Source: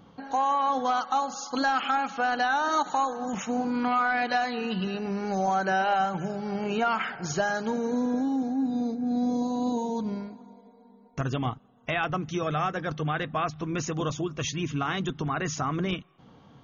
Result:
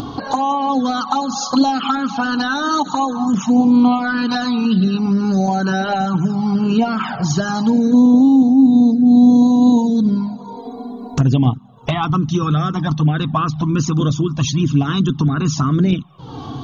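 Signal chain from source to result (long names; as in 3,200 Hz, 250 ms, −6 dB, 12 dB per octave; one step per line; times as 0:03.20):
octave-band graphic EQ 125/250/500/1,000/2,000/4,000 Hz +8/+9/−3/+8/−11/+9 dB
flanger swept by the level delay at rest 3 ms, full sweep at −15.5 dBFS
upward compression, threshold −21 dBFS
level +7.5 dB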